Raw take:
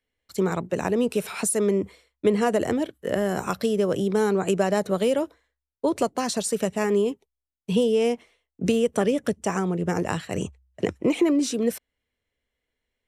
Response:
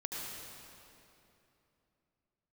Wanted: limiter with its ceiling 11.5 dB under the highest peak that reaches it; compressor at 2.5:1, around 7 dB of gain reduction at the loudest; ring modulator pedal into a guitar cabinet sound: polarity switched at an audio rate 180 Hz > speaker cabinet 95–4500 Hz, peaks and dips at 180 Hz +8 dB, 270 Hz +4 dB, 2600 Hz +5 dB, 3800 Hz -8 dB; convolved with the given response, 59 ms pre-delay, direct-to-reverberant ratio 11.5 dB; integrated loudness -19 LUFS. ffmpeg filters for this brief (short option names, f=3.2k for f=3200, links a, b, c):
-filter_complex "[0:a]acompressor=threshold=-27dB:ratio=2.5,alimiter=level_in=0.5dB:limit=-24dB:level=0:latency=1,volume=-0.5dB,asplit=2[a][b];[1:a]atrim=start_sample=2205,adelay=59[c];[b][c]afir=irnorm=-1:irlink=0,volume=-13.5dB[d];[a][d]amix=inputs=2:normalize=0,aeval=exprs='val(0)*sgn(sin(2*PI*180*n/s))':c=same,highpass=95,equalizer=f=180:t=q:w=4:g=8,equalizer=f=270:t=q:w=4:g=4,equalizer=f=2.6k:t=q:w=4:g=5,equalizer=f=3.8k:t=q:w=4:g=-8,lowpass=f=4.5k:w=0.5412,lowpass=f=4.5k:w=1.3066,volume=14.5dB"